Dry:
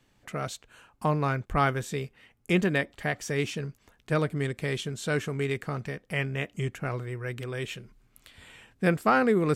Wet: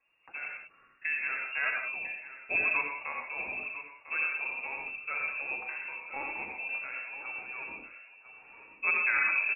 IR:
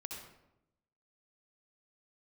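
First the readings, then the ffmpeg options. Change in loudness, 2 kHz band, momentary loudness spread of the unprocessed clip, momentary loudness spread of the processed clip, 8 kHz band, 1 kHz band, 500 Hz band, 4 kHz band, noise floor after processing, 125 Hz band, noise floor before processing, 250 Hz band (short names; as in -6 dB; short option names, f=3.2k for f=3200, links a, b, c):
-2.5 dB, +3.5 dB, 11 LU, 18 LU, under -35 dB, -9.0 dB, -19.0 dB, under -15 dB, -63 dBFS, under -35 dB, -67 dBFS, -25.5 dB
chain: -filter_complex "[0:a]flanger=delay=3.5:depth=2.4:regen=26:speed=1.3:shape=sinusoidal,aecho=1:1:1000:0.224[a];[1:a]atrim=start_sample=2205,afade=t=out:st=0.26:d=0.01,atrim=end_sample=11907[b];[a][b]afir=irnorm=-1:irlink=0,lowpass=f=2.4k:t=q:w=0.5098,lowpass=f=2.4k:t=q:w=0.6013,lowpass=f=2.4k:t=q:w=0.9,lowpass=f=2.4k:t=q:w=2.563,afreqshift=-2800"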